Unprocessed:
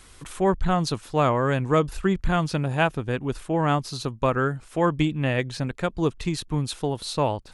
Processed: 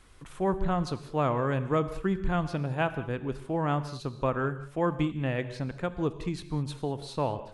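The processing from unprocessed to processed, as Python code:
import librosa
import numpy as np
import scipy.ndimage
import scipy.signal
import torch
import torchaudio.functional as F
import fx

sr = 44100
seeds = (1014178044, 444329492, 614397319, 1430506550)

y = fx.high_shelf(x, sr, hz=3200.0, db=-9.0)
y = fx.rev_gated(y, sr, seeds[0], gate_ms=230, shape='flat', drr_db=11.5)
y = y * librosa.db_to_amplitude(-5.5)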